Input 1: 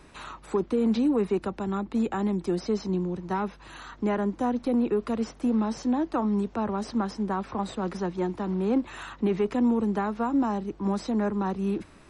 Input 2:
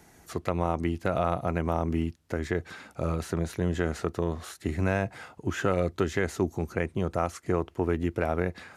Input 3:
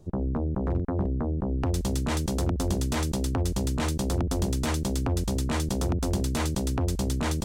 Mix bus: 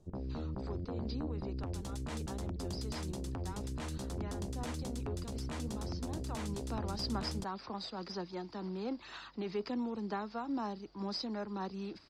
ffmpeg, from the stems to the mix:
-filter_complex "[0:a]lowpass=f=4.8k:t=q:w=13,lowshelf=f=180:g=-7.5,aphaser=in_gain=1:out_gain=1:delay=1.5:decay=0.23:speed=2:type=sinusoidal,adelay=150,volume=-11dB,afade=t=in:st=6.2:d=0.59:silence=0.375837[a];[2:a]lowpass=12k,bandreject=f=48.6:t=h:w=4,bandreject=f=97.2:t=h:w=4,bandreject=f=145.8:t=h:w=4,bandreject=f=194.4:t=h:w=4,bandreject=f=243:t=h:w=4,bandreject=f=291.6:t=h:w=4,bandreject=f=340.2:t=h:w=4,bandreject=f=388.8:t=h:w=4,bandreject=f=437.4:t=h:w=4,bandreject=f=486:t=h:w=4,bandreject=f=534.6:t=h:w=4,alimiter=limit=-24dB:level=0:latency=1:release=35,volume=-9.5dB[b];[a][b]amix=inputs=2:normalize=0"

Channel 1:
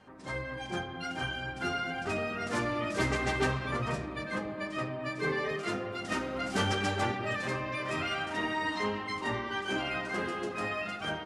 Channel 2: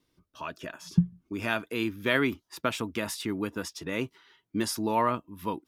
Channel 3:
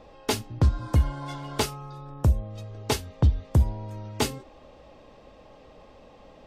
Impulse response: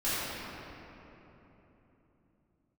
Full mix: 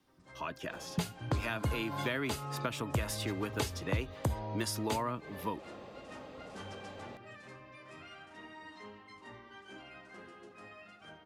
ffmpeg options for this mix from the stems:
-filter_complex "[0:a]volume=-18dB[a];[1:a]volume=-1dB,asplit=2[b][c];[2:a]highpass=89,bandreject=f=5.5k:w=9.4,adelay=700,volume=1.5dB[d];[c]apad=whole_len=316131[e];[d][e]sidechaincompress=threshold=-30dB:ratio=8:attack=38:release=336[f];[a][b][f]amix=inputs=3:normalize=0,acrossover=split=110|390[g][h][i];[g]acompressor=threshold=-35dB:ratio=4[j];[h]acompressor=threshold=-41dB:ratio=4[k];[i]acompressor=threshold=-34dB:ratio=4[l];[j][k][l]amix=inputs=3:normalize=0"

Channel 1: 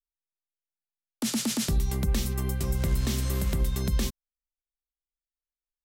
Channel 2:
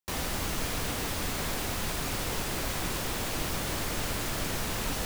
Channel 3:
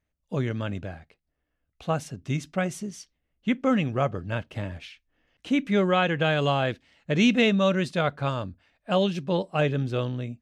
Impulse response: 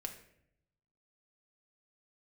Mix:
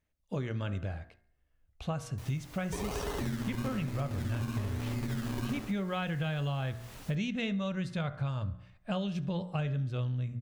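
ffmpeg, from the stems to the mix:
-filter_complex "[0:a]aeval=exprs='val(0)*sin(2*PI*180*n/s)':c=same,acrusher=samples=26:mix=1:aa=0.000001:lfo=1:lforange=15.6:lforate=1.1,adelay=1500,volume=-1.5dB,asplit=2[a][b];[b]volume=-3dB[c];[1:a]adelay=2100,volume=-17.5dB[d];[2:a]bandreject=f=59.49:t=h:w=4,bandreject=f=118.98:t=h:w=4,bandreject=f=178.47:t=h:w=4,bandreject=f=237.96:t=h:w=4,bandreject=f=297.45:t=h:w=4,bandreject=f=356.94:t=h:w=4,bandreject=f=416.43:t=h:w=4,bandreject=f=475.92:t=h:w=4,bandreject=f=535.41:t=h:w=4,bandreject=f=594.9:t=h:w=4,bandreject=f=654.39:t=h:w=4,bandreject=f=713.88:t=h:w=4,bandreject=f=773.37:t=h:w=4,bandreject=f=832.86:t=h:w=4,bandreject=f=892.35:t=h:w=4,bandreject=f=951.84:t=h:w=4,bandreject=f=1.01133k:t=h:w=4,bandreject=f=1.07082k:t=h:w=4,bandreject=f=1.13031k:t=h:w=4,bandreject=f=1.1898k:t=h:w=4,bandreject=f=1.24929k:t=h:w=4,bandreject=f=1.30878k:t=h:w=4,bandreject=f=1.36827k:t=h:w=4,bandreject=f=1.42776k:t=h:w=4,bandreject=f=1.48725k:t=h:w=4,bandreject=f=1.54674k:t=h:w=4,bandreject=f=1.60623k:t=h:w=4,bandreject=f=1.66572k:t=h:w=4,bandreject=f=1.72521k:t=h:w=4,bandreject=f=1.7847k:t=h:w=4,bandreject=f=1.84419k:t=h:w=4,bandreject=f=1.90368k:t=h:w=4,bandreject=f=1.96317k:t=h:w=4,bandreject=f=2.02266k:t=h:w=4,bandreject=f=2.08215k:t=h:w=4,bandreject=f=2.14164k:t=h:w=4,asubboost=boost=7.5:cutoff=120,volume=-1dB,asplit=2[e][f];[f]volume=-23.5dB[g];[c][g]amix=inputs=2:normalize=0,aecho=0:1:70|140|210|280|350|420:1|0.46|0.212|0.0973|0.0448|0.0206[h];[a][d][e][h]amix=inputs=4:normalize=0,acompressor=threshold=-31dB:ratio=6"

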